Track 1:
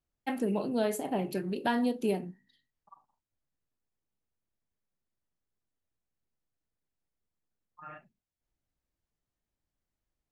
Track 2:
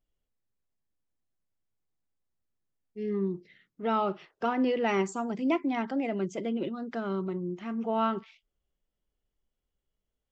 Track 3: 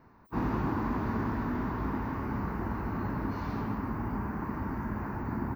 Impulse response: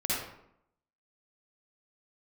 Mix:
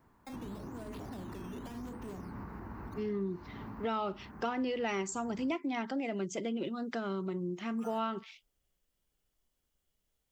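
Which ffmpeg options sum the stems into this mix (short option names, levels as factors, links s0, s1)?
-filter_complex "[0:a]acrusher=samples=10:mix=1:aa=0.000001:lfo=1:lforange=10:lforate=0.87,asoftclip=type=tanh:threshold=0.0282,volume=0.75[s0];[1:a]highshelf=f=3300:g=10.5,volume=1,asplit=2[s1][s2];[2:a]volume=0.422[s3];[s2]apad=whole_len=244911[s4];[s3][s4]sidechaincompress=threshold=0.0178:ratio=8:attack=8.3:release=683[s5];[s0][s5]amix=inputs=2:normalize=0,acrossover=split=410[s6][s7];[s7]acompressor=threshold=0.00794:ratio=4[s8];[s6][s8]amix=inputs=2:normalize=0,alimiter=level_in=3.55:limit=0.0631:level=0:latency=1:release=187,volume=0.282,volume=1[s9];[s1][s9]amix=inputs=2:normalize=0,acompressor=threshold=0.0224:ratio=3"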